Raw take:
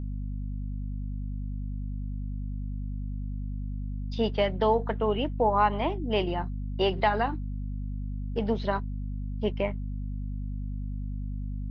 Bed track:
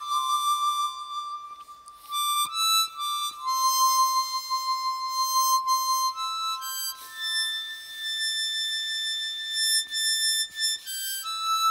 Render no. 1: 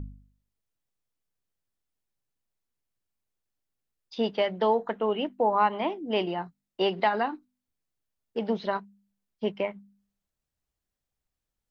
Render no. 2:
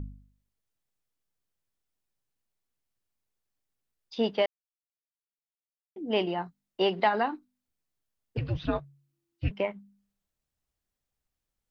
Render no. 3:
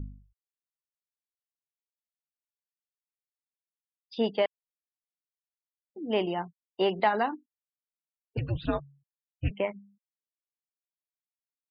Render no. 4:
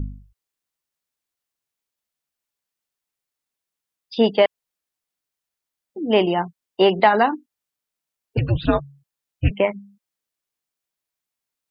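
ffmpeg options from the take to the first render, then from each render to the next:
-af "bandreject=f=50:t=h:w=4,bandreject=f=100:t=h:w=4,bandreject=f=150:t=h:w=4,bandreject=f=200:t=h:w=4,bandreject=f=250:t=h:w=4"
-filter_complex "[0:a]asettb=1/sr,asplit=3[s0][s1][s2];[s0]atrim=end=8.374[s3];[s1]atrim=start=8.37:end=9.51,asetpts=PTS-STARTPTS,afade=t=in:d=0.004:c=qsin,afade=t=out:st=1.136:d=0.004:c=qsin,afreqshift=-340[s4];[s2]atrim=start=9.506[s5];[s3][s4]acrossfade=d=0.004:c1=hsin:c2=qsin[s6];[s6][s5]acrossfade=d=0.004:c1=qsin:c2=hsin,asplit=3[s7][s8][s9];[s7]atrim=end=4.46,asetpts=PTS-STARTPTS,afade=t=out:st=4.456:d=0.004:c=hsin[s10];[s8]atrim=start=4.46:end=5.96,asetpts=PTS-STARTPTS,volume=0[s11];[s9]atrim=start=5.96,asetpts=PTS-STARTPTS,afade=t=in:d=0.004:c=hsin[s12];[s10][s11][s12]concat=n=3:v=0:a=1"
-filter_complex "[0:a]afftfilt=real='re*gte(hypot(re,im),0.00447)':imag='im*gte(hypot(re,im),0.00447)':win_size=1024:overlap=0.75,acrossover=split=2800[s0][s1];[s1]acompressor=threshold=0.00891:ratio=4:attack=1:release=60[s2];[s0][s2]amix=inputs=2:normalize=0"
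-af "volume=3.35,alimiter=limit=0.708:level=0:latency=1"

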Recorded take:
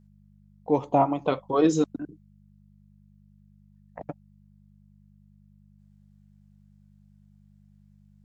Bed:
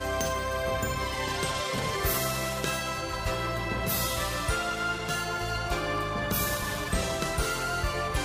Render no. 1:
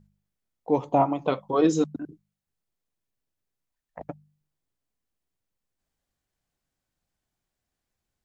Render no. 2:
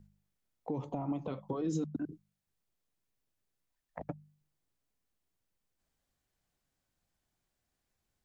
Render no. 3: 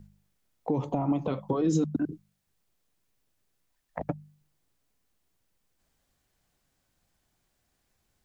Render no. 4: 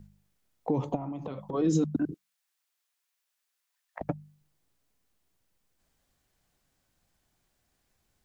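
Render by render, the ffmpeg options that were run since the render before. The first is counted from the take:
-af "bandreject=f=50:t=h:w=4,bandreject=f=100:t=h:w=4,bandreject=f=150:t=h:w=4,bandreject=f=200:t=h:w=4"
-filter_complex "[0:a]alimiter=limit=0.0944:level=0:latency=1:release=62,acrossover=split=280[s0][s1];[s1]acompressor=threshold=0.01:ratio=6[s2];[s0][s2]amix=inputs=2:normalize=0"
-af "volume=2.66"
-filter_complex "[0:a]asplit=3[s0][s1][s2];[s0]afade=t=out:st=0.95:d=0.02[s3];[s1]acompressor=threshold=0.0251:ratio=12:attack=3.2:release=140:knee=1:detection=peak,afade=t=in:st=0.95:d=0.02,afade=t=out:st=1.53:d=0.02[s4];[s2]afade=t=in:st=1.53:d=0.02[s5];[s3][s4][s5]amix=inputs=3:normalize=0,asettb=1/sr,asplit=3[s6][s7][s8];[s6]atrim=end=2.144[s9];[s7]atrim=start=2.14:end=4.01,asetpts=PTS-STARTPTS,afade=t=in:d=0.004:c=qsin,afade=t=out:st=1.866:d=0.004:c=qsin,highpass=1100[s10];[s8]atrim=start=4.006[s11];[s9][s10]acrossfade=d=0.004:c1=hsin:c2=qsin[s12];[s12][s11]acrossfade=d=0.004:c1=qsin:c2=hsin"

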